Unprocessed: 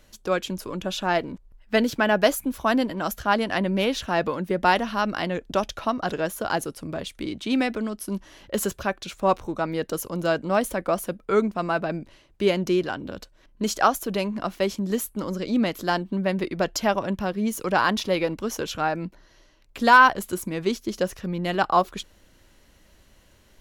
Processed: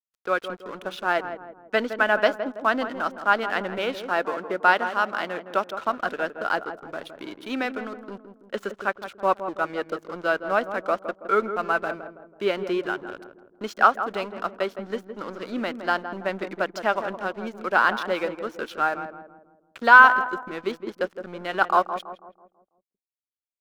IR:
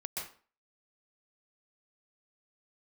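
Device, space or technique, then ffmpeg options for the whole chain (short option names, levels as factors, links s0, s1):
pocket radio on a weak battery: -filter_complex "[0:a]highpass=320,lowpass=3500,aeval=exprs='sgn(val(0))*max(abs(val(0))-0.0075,0)':c=same,equalizer=f=1400:t=o:w=0.4:g=8.5,asettb=1/sr,asplit=3[s0][s1][s2];[s0]atrim=end=3.784[s3];[s1]atrim=start=3.78:end=5.54,asetpts=PTS-STARTPTS,afade=t=in:d=0.004:c=qsin,afade=t=out:st=1.756:d=0.004:c=qsin,highpass=160[s4];[s2]atrim=start=5.536[s5];[s3][s4]acrossfade=d=0.004:c1=hsin:c2=qsin[s6];[s6][s5]acrossfade=d=0.004:c1=qsin:c2=hsin,asplit=2[s7][s8];[s8]adelay=164,lowpass=f=1000:p=1,volume=0.398,asplit=2[s9][s10];[s10]adelay=164,lowpass=f=1000:p=1,volume=0.49,asplit=2[s11][s12];[s12]adelay=164,lowpass=f=1000:p=1,volume=0.49,asplit=2[s13][s14];[s14]adelay=164,lowpass=f=1000:p=1,volume=0.49,asplit=2[s15][s16];[s16]adelay=164,lowpass=f=1000:p=1,volume=0.49,asplit=2[s17][s18];[s18]adelay=164,lowpass=f=1000:p=1,volume=0.49[s19];[s7][s9][s11][s13][s15][s17][s19]amix=inputs=7:normalize=0,volume=0.891"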